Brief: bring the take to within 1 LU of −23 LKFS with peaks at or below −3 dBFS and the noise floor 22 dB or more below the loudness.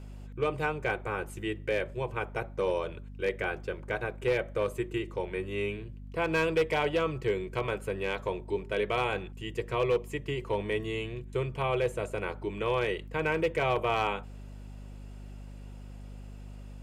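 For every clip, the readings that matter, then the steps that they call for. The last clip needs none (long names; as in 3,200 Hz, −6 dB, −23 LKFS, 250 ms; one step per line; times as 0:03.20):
share of clipped samples 0.4%; peaks flattened at −20.0 dBFS; mains hum 50 Hz; hum harmonics up to 250 Hz; level of the hum −42 dBFS; integrated loudness −31.5 LKFS; sample peak −20.0 dBFS; target loudness −23.0 LKFS
→ clipped peaks rebuilt −20 dBFS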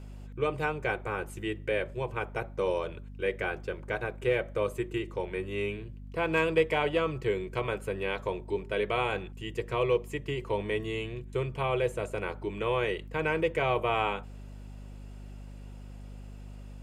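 share of clipped samples 0.0%; mains hum 50 Hz; hum harmonics up to 250 Hz; level of the hum −41 dBFS
→ hum removal 50 Hz, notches 5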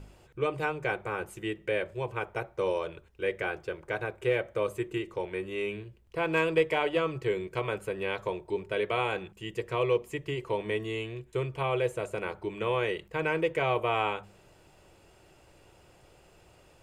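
mains hum none found; integrated loudness −31.5 LKFS; sample peak −13.0 dBFS; target loudness −23.0 LKFS
→ level +8.5 dB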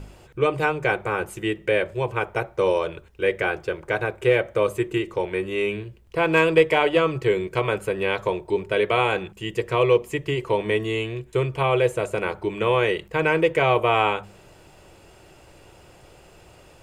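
integrated loudness −23.0 LKFS; sample peak −4.5 dBFS; background noise floor −51 dBFS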